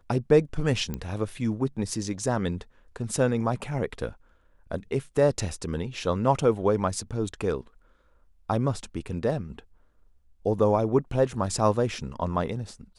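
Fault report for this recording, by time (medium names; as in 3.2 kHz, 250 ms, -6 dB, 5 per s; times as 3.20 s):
0.94 s: pop -18 dBFS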